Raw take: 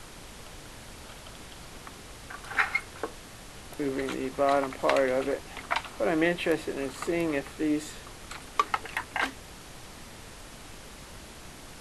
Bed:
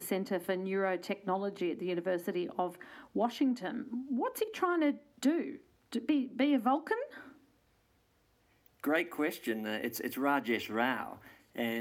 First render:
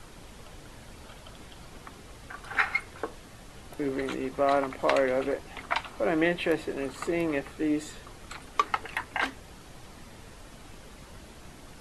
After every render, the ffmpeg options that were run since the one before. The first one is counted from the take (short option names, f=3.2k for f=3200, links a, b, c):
-af "afftdn=nr=6:nf=-47"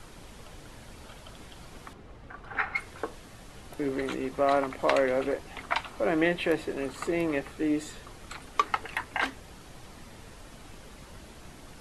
-filter_complex "[0:a]asettb=1/sr,asplit=3[a][b][c];[a]atrim=end=1.934[d];[b]atrim=start=1.93:end=2.76,asetpts=PTS-STARTPTS,afade=t=in:d=0.004:c=qsin,afade=t=out:st=0.826:d=0.004:c=qsin,lowpass=f=1.3k:p=1[e];[c]atrim=start=2.756[f];[d][e]acrossfade=d=0.004:c1=hsin:c2=qsin[g];[g][f]acrossfade=d=0.004:c1=qsin:c2=hsin"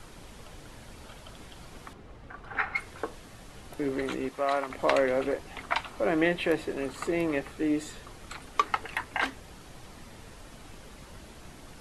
-filter_complex "[0:a]asettb=1/sr,asplit=3[a][b][c];[a]atrim=end=4.294[d];[b]atrim=start=4.29:end=4.7,asetpts=PTS-STARTPTS,afade=t=in:d=0.004:c=qsin,afade=t=out:st=0.406:d=0.004:c=qsin,lowshelf=f=440:g=-11[e];[c]atrim=start=4.696[f];[d][e]acrossfade=d=0.004:c1=hsin:c2=qsin[g];[g][f]acrossfade=d=0.004:c1=qsin:c2=hsin"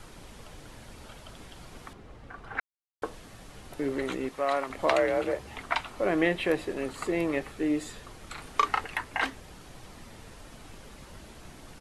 -filter_complex "[0:a]asettb=1/sr,asplit=3[a][b][c];[a]atrim=end=4.894[d];[b]atrim=start=4.89:end=5.57,asetpts=PTS-STARTPTS,afade=t=in:d=0.004:c=qsin,afade=t=out:st=0.676:d=0.004:c=qsin,afreqshift=50[e];[c]atrim=start=5.566[f];[d][e]acrossfade=d=0.004:c1=hsin:c2=qsin[g];[g][f]acrossfade=d=0.004:c1=qsin:c2=hsin,asplit=3[h][i][j];[h]afade=t=out:st=8.36:d=0.02[k];[i]asplit=2[l][m];[m]adelay=35,volume=-3.5dB[n];[l][n]amix=inputs=2:normalize=0,afade=t=in:st=8.36:d=0.02,afade=t=out:st=8.84:d=0.02[o];[j]afade=t=in:st=8.84:d=0.02[p];[k][o][p]amix=inputs=3:normalize=0,asplit=3[q][r][s];[q]atrim=end=2.6,asetpts=PTS-STARTPTS,afade=t=out:st=2.596:d=0.004:c=hsin[t];[r]atrim=start=2.6:end=3.02,asetpts=PTS-STARTPTS,volume=0[u];[s]atrim=start=3.02,asetpts=PTS-STARTPTS,afade=t=in:d=0.004:c=hsin[v];[t][u][v]concat=n=3:v=0:a=1"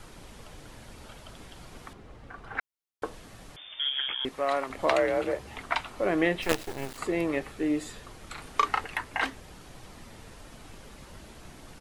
-filter_complex "[0:a]asettb=1/sr,asplit=3[a][b][c];[a]atrim=end=3.564[d];[b]atrim=start=3.56:end=4.25,asetpts=PTS-STARTPTS,afade=t=in:d=0.004:c=qsin,afade=t=out:st=0.686:d=0.004:c=qsin,lowpass=f=3.1k:t=q:w=0.5098,lowpass=f=3.1k:t=q:w=0.6013,lowpass=f=3.1k:t=q:w=0.9,lowpass=f=3.1k:t=q:w=2.563,afreqshift=-3600[e];[c]atrim=start=4.246[f];[d][e]acrossfade=d=0.004:c1=hsin:c2=qsin[g];[g][f]acrossfade=d=0.004:c1=qsin:c2=hsin,asplit=3[h][i][j];[h]afade=t=out:st=6.41:d=0.02[k];[i]acrusher=bits=4:dc=4:mix=0:aa=0.000001,afade=t=in:st=6.41:d=0.02,afade=t=out:st=6.97:d=0.02[l];[j]afade=t=in:st=6.97:d=0.02[m];[k][l][m]amix=inputs=3:normalize=0"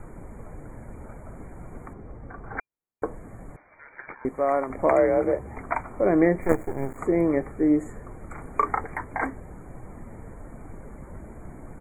-af "afftfilt=real='re*(1-between(b*sr/4096,2400,6600))':imag='im*(1-between(b*sr/4096,2400,6600))':win_size=4096:overlap=0.75,tiltshelf=f=1.4k:g=8"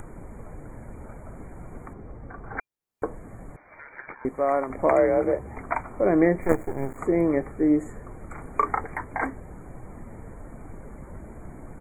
-af "acompressor=mode=upward:threshold=-38dB:ratio=2.5"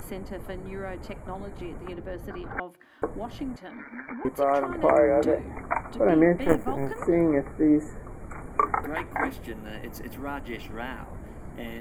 -filter_complex "[1:a]volume=-4.5dB[a];[0:a][a]amix=inputs=2:normalize=0"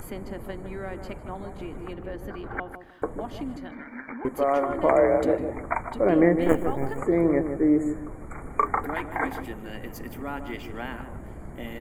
-filter_complex "[0:a]asplit=2[a][b];[b]adelay=154,lowpass=f=1.1k:p=1,volume=-7dB,asplit=2[c][d];[d]adelay=154,lowpass=f=1.1k:p=1,volume=0.3,asplit=2[e][f];[f]adelay=154,lowpass=f=1.1k:p=1,volume=0.3,asplit=2[g][h];[h]adelay=154,lowpass=f=1.1k:p=1,volume=0.3[i];[a][c][e][g][i]amix=inputs=5:normalize=0"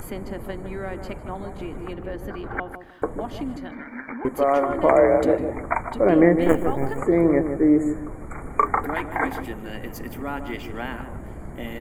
-af "volume=3.5dB,alimiter=limit=-3dB:level=0:latency=1"